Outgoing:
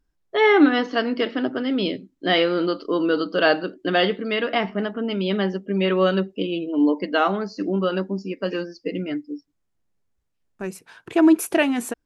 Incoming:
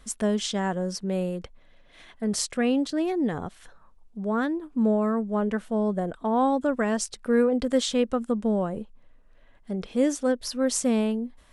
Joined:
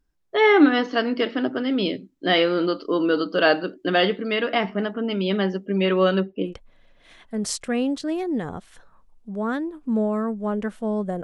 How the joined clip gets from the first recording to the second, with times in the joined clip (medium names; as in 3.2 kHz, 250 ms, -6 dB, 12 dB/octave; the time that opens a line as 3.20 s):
outgoing
6.04–6.54 s: low-pass 8.2 kHz -> 1.3 kHz
6.49 s: go over to incoming from 1.38 s, crossfade 0.10 s